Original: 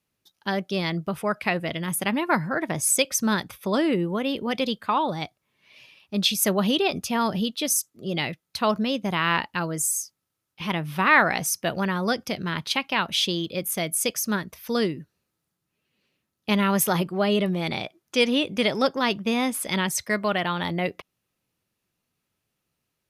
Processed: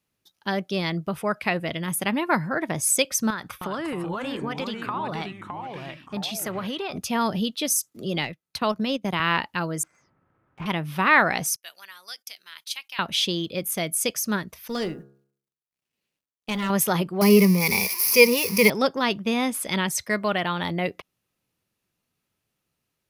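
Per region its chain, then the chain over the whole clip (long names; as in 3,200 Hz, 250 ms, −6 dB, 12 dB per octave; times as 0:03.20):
0:03.30–0:06.98: parametric band 1,300 Hz +10.5 dB 1.1 octaves + downward compressor, threshold −27 dBFS + delay with pitch and tempo change per echo 312 ms, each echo −3 semitones, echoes 3, each echo −6 dB
0:07.92–0:09.20: transient designer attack −2 dB, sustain −12 dB + multiband upward and downward compressor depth 40%
0:09.83–0:10.66: low-pass filter 1,700 Hz 24 dB per octave + leveller curve on the samples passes 2 + upward compression, threshold −48 dBFS
0:11.56–0:12.99: high-pass filter 1,100 Hz 6 dB per octave + noise gate −50 dBFS, range −18 dB + first difference
0:14.68–0:16.70: mu-law and A-law mismatch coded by A + hum removal 68.37 Hz, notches 25 + tube saturation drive 21 dB, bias 0.4
0:17.21–0:18.70: spike at every zero crossing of −18.5 dBFS + EQ curve with evenly spaced ripples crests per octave 0.85, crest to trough 18 dB
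whole clip: no processing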